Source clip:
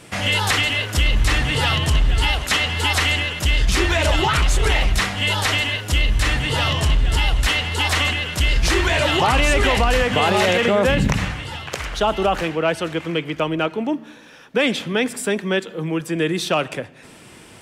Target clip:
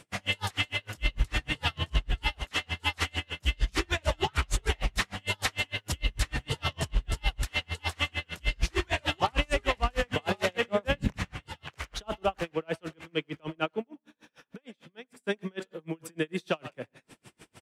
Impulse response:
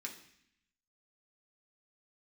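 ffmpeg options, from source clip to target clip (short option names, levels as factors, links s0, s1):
-filter_complex "[0:a]asettb=1/sr,asplit=3[s0][s1][s2];[s0]atrim=end=13.844[s3];[s1]atrim=start=13.84:end=15.27,asetpts=PTS-STARTPTS,afade=t=in:d=0.004:c=qsin,afade=t=out:st=1.426:d=0.004:c=qsin,acompressor=threshold=0.0158:ratio=4[s4];[s2]atrim=start=15.266[s5];[s3][s4]acrossfade=d=0.004:c1=hsin:c2=qsin[s6];[s6][s5]acrossfade=d=0.004:c1=qsin:c2=hsin,asplit=2[s7][s8];[s8]adelay=90,highpass=300,lowpass=3400,asoftclip=type=hard:threshold=0.15,volume=0.178[s9];[s7][s9]amix=inputs=2:normalize=0,aeval=exprs='val(0)*pow(10,-38*(0.5-0.5*cos(2*PI*6.6*n/s))/20)':c=same,volume=0.531"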